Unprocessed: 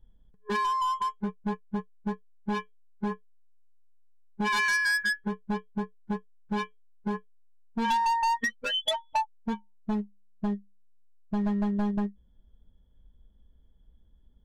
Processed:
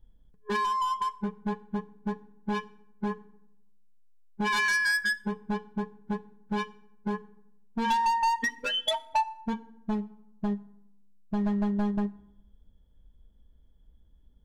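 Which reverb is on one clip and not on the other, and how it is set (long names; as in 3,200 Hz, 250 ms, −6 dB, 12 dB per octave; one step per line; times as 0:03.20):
feedback delay network reverb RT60 0.81 s, low-frequency decay 1.35×, high-frequency decay 0.65×, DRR 15 dB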